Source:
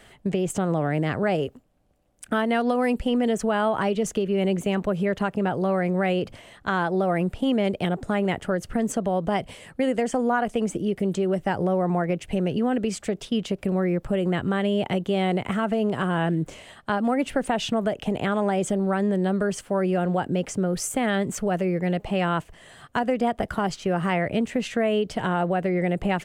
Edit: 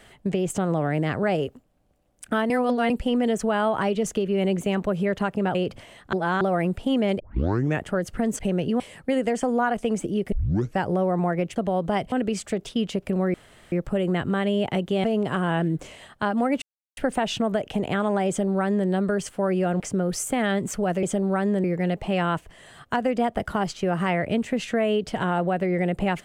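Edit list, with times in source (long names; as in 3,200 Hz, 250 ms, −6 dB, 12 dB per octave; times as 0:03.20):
0:02.50–0:02.90: reverse
0:05.55–0:06.11: remove
0:06.69–0:06.97: reverse
0:07.76: tape start 0.63 s
0:08.95–0:09.51: swap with 0:12.27–0:12.68
0:11.03: tape start 0.46 s
0:13.90: splice in room tone 0.38 s
0:15.22–0:15.71: remove
0:17.29: splice in silence 0.35 s
0:18.60–0:19.21: duplicate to 0:21.67
0:20.12–0:20.44: remove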